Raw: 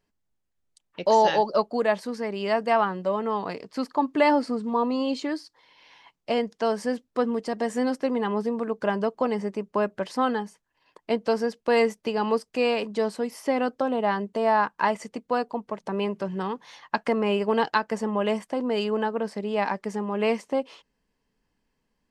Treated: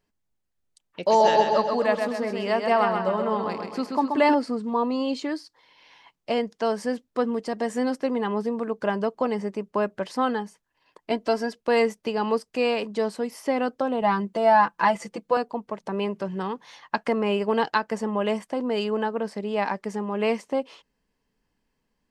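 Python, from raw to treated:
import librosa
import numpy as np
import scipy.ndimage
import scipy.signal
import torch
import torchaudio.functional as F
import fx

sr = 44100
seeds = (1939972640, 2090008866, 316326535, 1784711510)

y = fx.echo_feedback(x, sr, ms=130, feedback_pct=51, wet_db=-5, at=(1.01, 4.33), fade=0.02)
y = fx.comb(y, sr, ms=3.0, depth=0.65, at=(11.11, 11.56))
y = fx.comb(y, sr, ms=5.9, depth=0.83, at=(14.01, 15.37))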